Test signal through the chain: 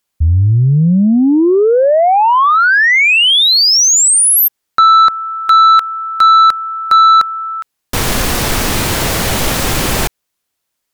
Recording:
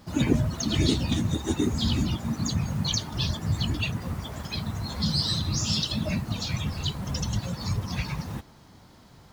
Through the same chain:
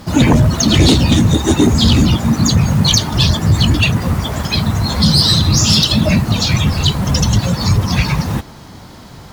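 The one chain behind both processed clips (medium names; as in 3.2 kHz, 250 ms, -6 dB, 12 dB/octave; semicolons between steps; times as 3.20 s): sine folder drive 8 dB, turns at -9 dBFS; trim +4.5 dB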